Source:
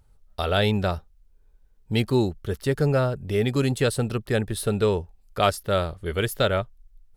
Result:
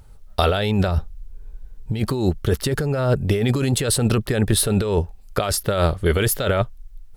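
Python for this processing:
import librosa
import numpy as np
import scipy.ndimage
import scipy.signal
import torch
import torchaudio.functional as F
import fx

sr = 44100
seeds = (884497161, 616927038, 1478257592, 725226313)

y = fx.low_shelf(x, sr, hz=170.0, db=9.0, at=(0.88, 2.0))
y = fx.over_compress(y, sr, threshold_db=-27.0, ratio=-1.0)
y = y * librosa.db_to_amplitude(8.0)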